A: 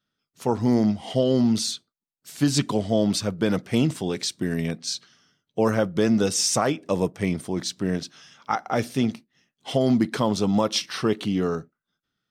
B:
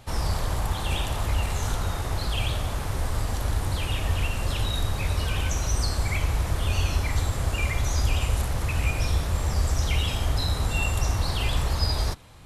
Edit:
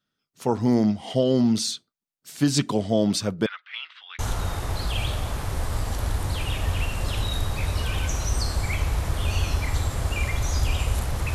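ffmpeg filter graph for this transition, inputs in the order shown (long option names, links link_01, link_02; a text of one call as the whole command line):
ffmpeg -i cue0.wav -i cue1.wav -filter_complex "[0:a]asettb=1/sr,asplit=3[link_01][link_02][link_03];[link_01]atrim=end=3.464[link_04];[link_02]atrim=start=3.46:end=4.19,asetpts=PTS-STARTPTS,afade=type=in:duration=0.004:curve=qsin,afade=type=out:start_time=0.726:duration=0.004:curve=qsin,asuperpass=centerf=2100:order=8:qfactor=0.82[link_05];[link_03]atrim=start=4.186[link_06];[link_04][link_05]acrossfade=duration=0.004:curve1=hsin:curve2=qsin[link_07];[link_07][link_06]acrossfade=duration=0.004:curve1=qsin:curve2=hsin,apad=whole_dur=11.34,atrim=end=11.34,atrim=end=4.192[link_08];[1:a]atrim=start=1.608:end=8.76[link_09];[link_08][link_09]acrossfade=duration=0.004:curve1=hsin:curve2=hsin" out.wav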